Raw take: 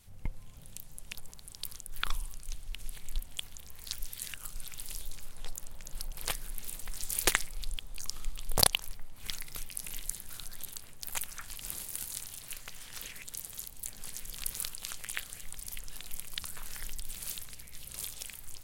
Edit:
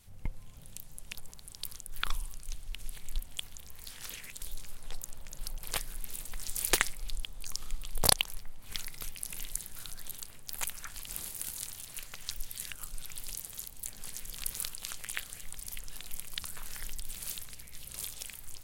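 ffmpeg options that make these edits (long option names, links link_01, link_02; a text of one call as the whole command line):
ffmpeg -i in.wav -filter_complex "[0:a]asplit=5[link_01][link_02][link_03][link_04][link_05];[link_01]atrim=end=3.902[link_06];[link_02]atrim=start=12.818:end=13.342[link_07];[link_03]atrim=start=4.958:end=12.822[link_08];[link_04]atrim=start=3.898:end=4.962[link_09];[link_05]atrim=start=13.338[link_10];[link_06][link_07]acrossfade=duration=0.004:curve1=hsin:curve2=hsin[link_11];[link_11][link_08]acrossfade=duration=0.004:curve1=hsin:curve2=hsin[link_12];[link_12][link_09]acrossfade=duration=0.004:curve1=hsin:curve2=hsin[link_13];[link_13][link_10]acrossfade=duration=0.004:curve1=hsin:curve2=hsin" out.wav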